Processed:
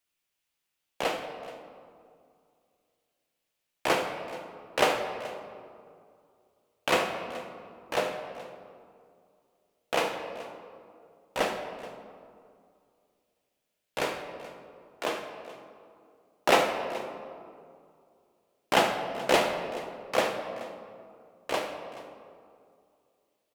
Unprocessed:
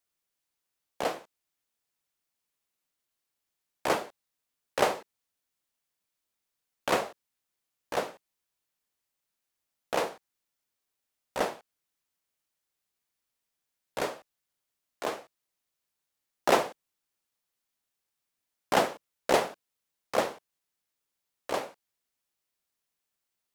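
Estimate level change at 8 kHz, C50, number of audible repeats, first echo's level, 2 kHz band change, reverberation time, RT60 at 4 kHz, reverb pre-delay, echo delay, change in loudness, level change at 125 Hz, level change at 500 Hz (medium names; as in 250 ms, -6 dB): +1.5 dB, 6.0 dB, 2, -14.5 dB, +4.5 dB, 2.3 s, 1.3 s, 6 ms, 74 ms, +1.0 dB, +2.5 dB, +2.0 dB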